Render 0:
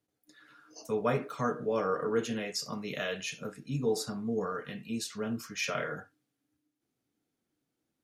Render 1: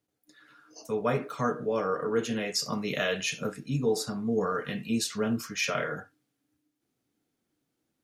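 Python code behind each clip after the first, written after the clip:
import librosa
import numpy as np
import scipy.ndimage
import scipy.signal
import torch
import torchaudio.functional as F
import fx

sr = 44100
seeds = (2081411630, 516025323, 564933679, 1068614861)

y = fx.rider(x, sr, range_db=4, speed_s=0.5)
y = y * 10.0 ** (4.0 / 20.0)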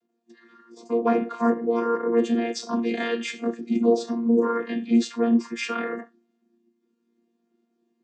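y = fx.chord_vocoder(x, sr, chord='bare fifth', root=58)
y = y * 10.0 ** (7.5 / 20.0)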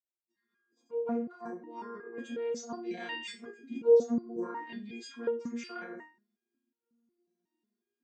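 y = fx.fade_in_head(x, sr, length_s=2.53)
y = fx.resonator_held(y, sr, hz=5.5, low_hz=180.0, high_hz=470.0)
y = y * 10.0 ** (3.0 / 20.0)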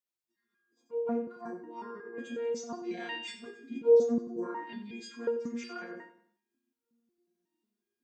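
y = fx.echo_feedback(x, sr, ms=92, feedback_pct=40, wet_db=-13)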